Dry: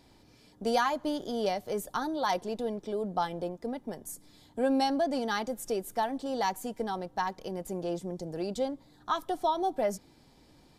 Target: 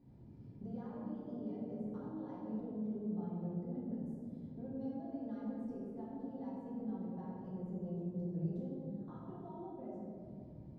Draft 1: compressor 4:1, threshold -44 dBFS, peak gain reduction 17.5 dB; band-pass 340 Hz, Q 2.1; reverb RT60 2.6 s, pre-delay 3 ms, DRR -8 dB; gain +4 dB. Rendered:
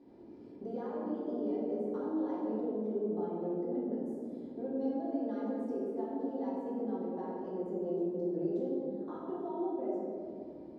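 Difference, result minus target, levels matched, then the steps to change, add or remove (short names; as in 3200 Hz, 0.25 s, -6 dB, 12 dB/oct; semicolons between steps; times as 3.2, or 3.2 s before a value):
125 Hz band -12.0 dB
change: band-pass 130 Hz, Q 2.1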